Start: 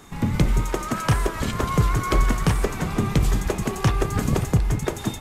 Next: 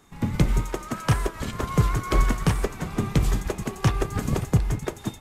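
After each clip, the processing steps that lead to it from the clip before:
expander for the loud parts 1.5 to 1, over −34 dBFS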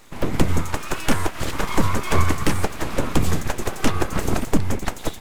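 in parallel at +2 dB: downward compressor, threshold −29 dBFS, peak gain reduction 15 dB
on the sum: full-wave rectification
level +2.5 dB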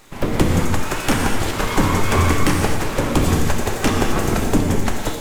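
reverb whose tail is shaped and stops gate 270 ms flat, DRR 1 dB
level +2 dB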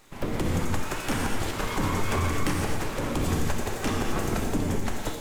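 brickwall limiter −8 dBFS, peak gain reduction 6.5 dB
level −8 dB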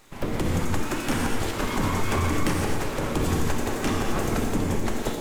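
echo through a band-pass that steps 523 ms, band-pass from 300 Hz, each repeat 0.7 octaves, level −3.5 dB
level +1.5 dB

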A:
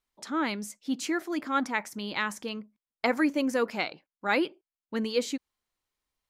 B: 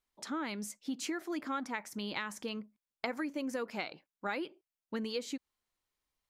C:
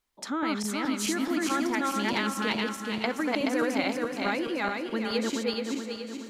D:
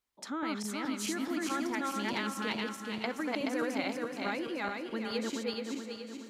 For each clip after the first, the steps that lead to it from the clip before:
downward compressor 10 to 1, threshold −31 dBFS, peak gain reduction 11 dB; level −2 dB
feedback delay that plays each chunk backwards 213 ms, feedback 67%, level 0 dB; feedback delay with all-pass diffusion 508 ms, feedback 49%, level −16 dB; level +6 dB
high-pass filter 43 Hz; level −6 dB

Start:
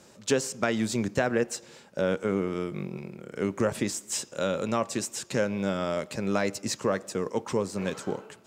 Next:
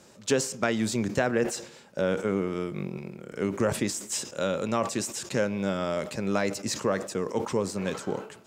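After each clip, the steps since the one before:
level that may fall only so fast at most 110 dB per second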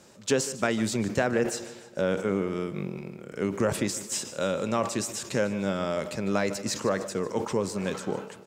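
repeating echo 151 ms, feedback 52%, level −16.5 dB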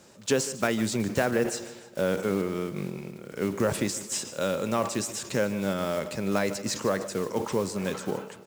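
one scale factor per block 5 bits

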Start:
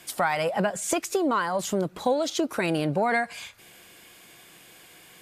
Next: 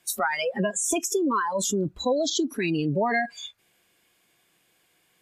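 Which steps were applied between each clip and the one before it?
noise reduction from a noise print of the clip's start 26 dB
in parallel at −1 dB: compressor whose output falls as the input rises −37 dBFS, ratio −1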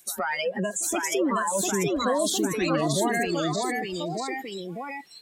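brickwall limiter −19 dBFS, peak gain reduction 5.5 dB
delay with pitch and tempo change per echo 757 ms, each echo +1 semitone, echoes 3
echo ahead of the sound 117 ms −21 dB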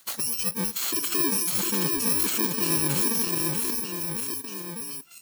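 samples in bit-reversed order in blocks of 64 samples

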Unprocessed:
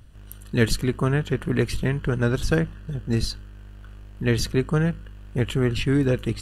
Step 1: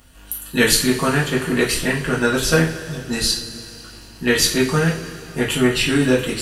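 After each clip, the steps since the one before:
spectral tilt +2.5 dB per octave
coupled-rooms reverb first 0.36 s, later 3.2 s, from −19 dB, DRR −5.5 dB
level +2 dB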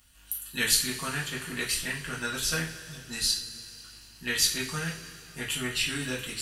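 guitar amp tone stack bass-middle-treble 5-5-5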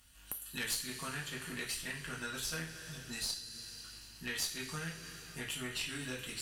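downward compressor 2 to 1, threshold −41 dBFS, peak gain reduction 12.5 dB
tube saturation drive 23 dB, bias 0.75
level +2.5 dB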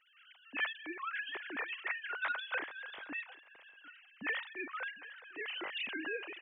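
three sine waves on the formant tracks
single-tap delay 751 ms −21 dB

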